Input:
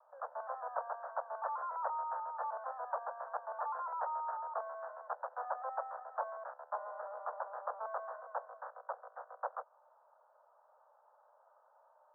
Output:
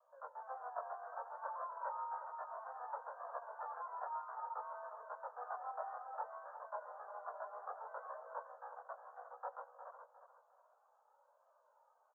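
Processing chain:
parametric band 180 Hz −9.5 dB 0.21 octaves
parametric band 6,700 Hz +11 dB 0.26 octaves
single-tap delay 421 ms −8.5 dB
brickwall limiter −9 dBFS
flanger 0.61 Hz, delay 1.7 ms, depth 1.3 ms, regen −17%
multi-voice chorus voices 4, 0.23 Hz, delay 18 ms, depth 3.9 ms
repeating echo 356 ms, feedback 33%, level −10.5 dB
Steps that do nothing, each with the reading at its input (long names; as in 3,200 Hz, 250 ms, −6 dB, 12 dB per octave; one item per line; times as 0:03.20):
parametric band 180 Hz: nothing at its input below 400 Hz
parametric band 6,700 Hz: nothing at its input above 1,800 Hz
brickwall limiter −9 dBFS: peak of its input −22.0 dBFS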